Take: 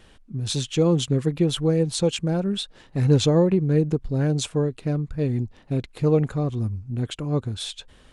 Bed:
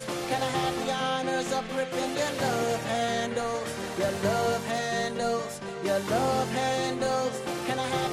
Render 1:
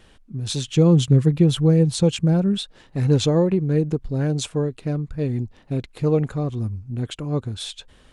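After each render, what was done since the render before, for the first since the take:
0:00.68–0:02.58: parametric band 120 Hz +9 dB 1.7 octaves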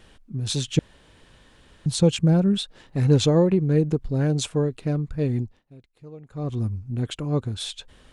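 0:00.79–0:01.86: fill with room tone
0:05.38–0:06.54: duck −22.5 dB, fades 0.25 s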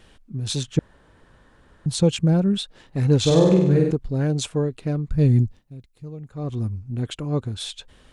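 0:00.63–0:01.91: high shelf with overshoot 2,000 Hz −7.5 dB, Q 1.5
0:03.20–0:03.91: flutter between parallel walls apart 8.4 metres, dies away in 0.91 s
0:05.11–0:06.30: bass and treble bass +10 dB, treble +7 dB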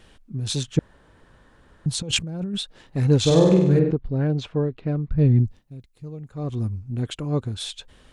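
0:02.02–0:02.55: compressor whose output falls as the input rises −28 dBFS
0:03.79–0:05.44: high-frequency loss of the air 250 metres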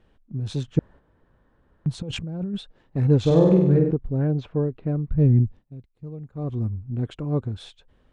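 low-pass filter 1,000 Hz 6 dB per octave
noise gate −42 dBFS, range −7 dB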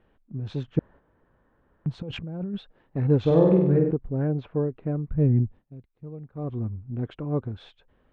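low-pass filter 2,500 Hz 12 dB per octave
low-shelf EQ 180 Hz −6 dB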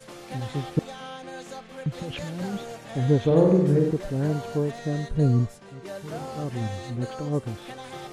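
mix in bed −10.5 dB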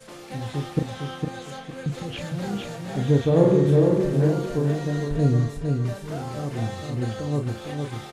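double-tracking delay 35 ms −6.5 dB
on a send: repeating echo 457 ms, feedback 29%, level −4.5 dB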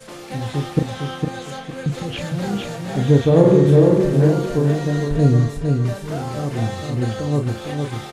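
level +5.5 dB
brickwall limiter −2 dBFS, peak gain reduction 2.5 dB

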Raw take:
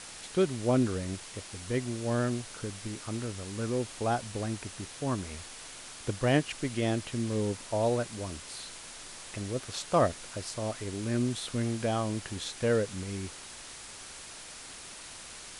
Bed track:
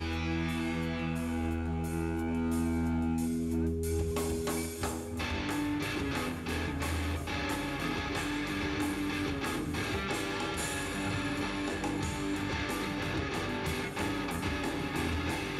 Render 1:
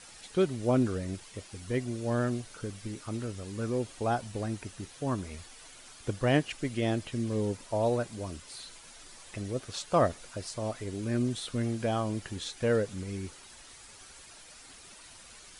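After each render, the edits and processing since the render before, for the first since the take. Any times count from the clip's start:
broadband denoise 9 dB, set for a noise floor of −46 dBFS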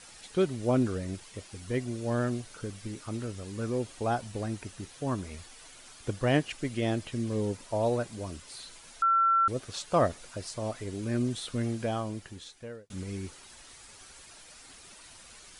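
0:09.02–0:09.48: beep over 1,350 Hz −20.5 dBFS
0:11.71–0:12.90: fade out linear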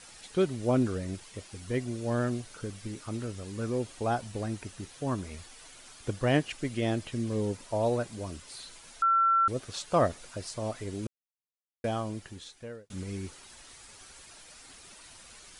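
0:11.07–0:11.84: silence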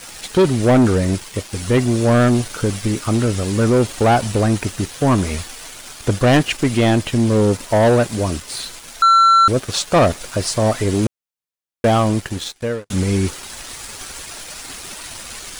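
in parallel at +0.5 dB: speech leveller within 5 dB 2 s
on the sum: leveller curve on the samples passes 3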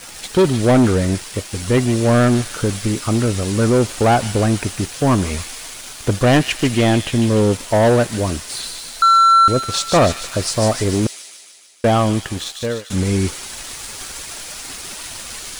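delay with a high-pass on its return 149 ms, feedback 64%, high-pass 2,900 Hz, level −4 dB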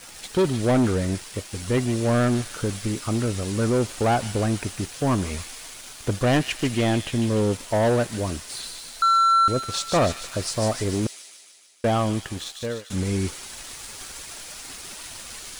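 level −7 dB

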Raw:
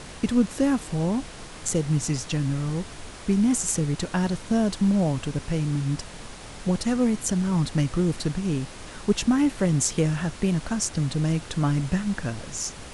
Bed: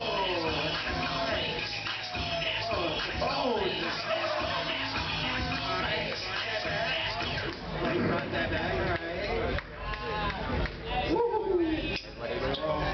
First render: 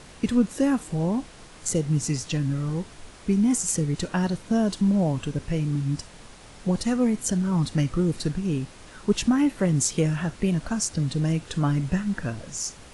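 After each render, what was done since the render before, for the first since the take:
noise reduction from a noise print 6 dB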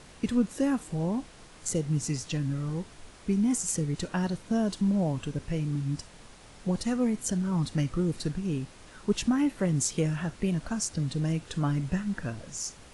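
level −4.5 dB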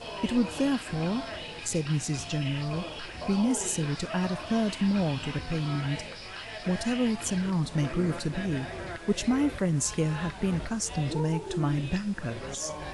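mix in bed −8 dB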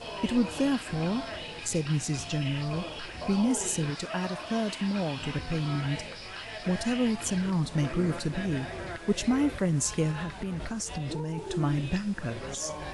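0:03.90–0:05.19: low-shelf EQ 160 Hz −10.5 dB
0:10.11–0:11.38: downward compressor, threshold −29 dBFS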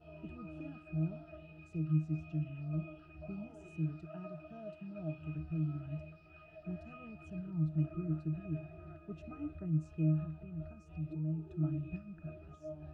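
resonances in every octave D#, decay 0.25 s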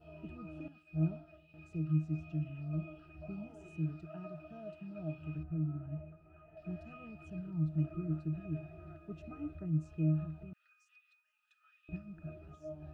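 0:00.68–0:01.54: multiband upward and downward expander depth 100%
0:05.43–0:06.57: low-pass filter 1,400 Hz
0:10.53–0:11.89: Butterworth high-pass 1,500 Hz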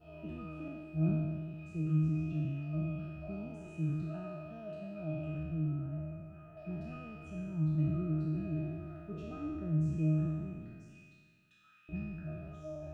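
peak hold with a decay on every bin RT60 1.78 s

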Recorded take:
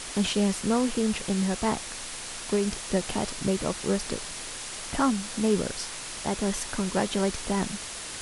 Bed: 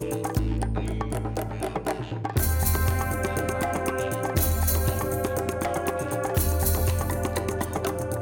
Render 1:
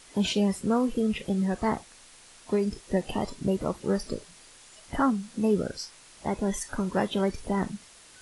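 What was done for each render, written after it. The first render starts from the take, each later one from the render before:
noise reduction from a noise print 15 dB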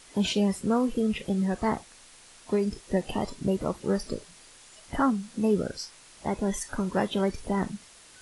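no processing that can be heard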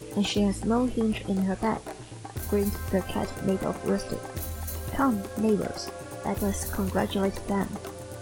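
mix in bed −11 dB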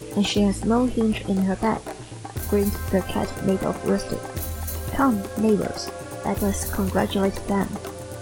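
level +4.5 dB

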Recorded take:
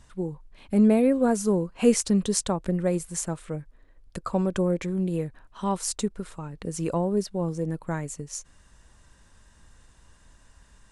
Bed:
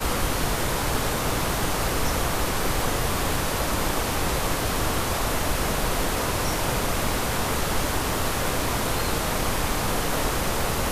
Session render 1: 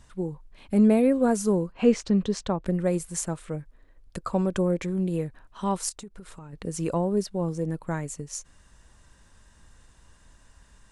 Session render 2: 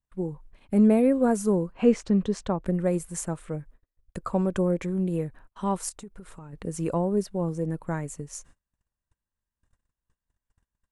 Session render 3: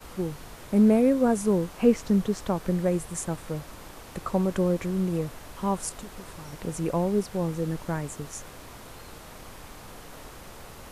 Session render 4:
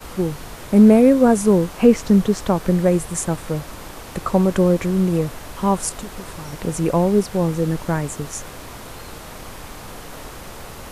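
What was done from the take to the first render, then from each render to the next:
0:01.72–0:02.66: high-frequency loss of the air 150 metres; 0:05.89–0:06.53: downward compressor 8 to 1, threshold −38 dBFS
noise gate −48 dBFS, range −34 dB; parametric band 4,600 Hz −6.5 dB 1.5 octaves
mix in bed −19.5 dB
level +8.5 dB; brickwall limiter −2 dBFS, peak gain reduction 2 dB

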